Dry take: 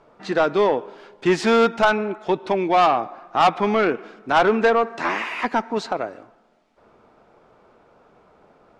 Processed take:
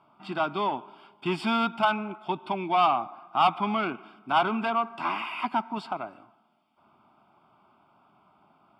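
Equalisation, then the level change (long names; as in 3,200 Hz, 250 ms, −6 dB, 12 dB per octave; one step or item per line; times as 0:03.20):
high-pass filter 130 Hz 12 dB per octave
Butterworth band-reject 4,000 Hz, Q 7
phaser with its sweep stopped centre 1,800 Hz, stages 6
−3.0 dB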